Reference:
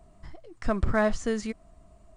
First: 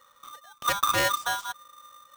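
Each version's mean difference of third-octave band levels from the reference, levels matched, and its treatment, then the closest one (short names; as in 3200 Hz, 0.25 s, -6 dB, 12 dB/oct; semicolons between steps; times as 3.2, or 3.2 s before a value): 13.5 dB: in parallel at -5.5 dB: backlash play -26.5 dBFS; on the sum: polarity switched at an audio rate 1200 Hz; gain -4.5 dB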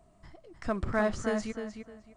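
4.0 dB: low shelf 63 Hz -9 dB; darkening echo 0.306 s, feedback 24%, low-pass 4500 Hz, level -6.5 dB; gain -3.5 dB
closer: second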